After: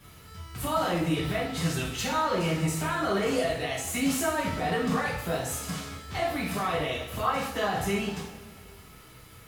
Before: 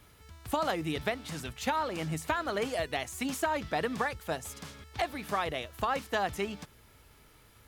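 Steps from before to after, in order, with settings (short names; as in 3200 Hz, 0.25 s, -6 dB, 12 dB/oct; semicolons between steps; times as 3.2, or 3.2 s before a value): limiter -26.5 dBFS, peak gain reduction 10.5 dB; tempo 0.81×; two-slope reverb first 0.61 s, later 2.4 s, DRR -8 dB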